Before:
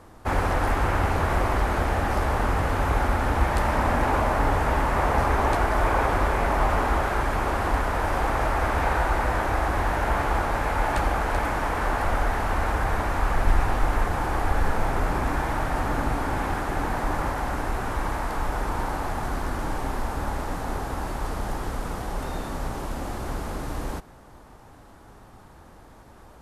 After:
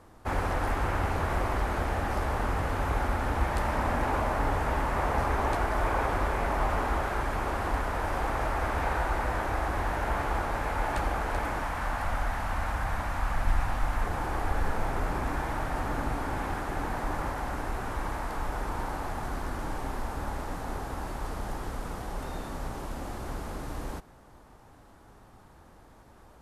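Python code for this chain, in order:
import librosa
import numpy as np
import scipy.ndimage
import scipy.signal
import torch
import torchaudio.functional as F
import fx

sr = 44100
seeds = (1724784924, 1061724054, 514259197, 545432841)

y = fx.peak_eq(x, sr, hz=400.0, db=-10.5, octaves=0.69, at=(11.63, 14.03))
y = F.gain(torch.from_numpy(y), -5.5).numpy()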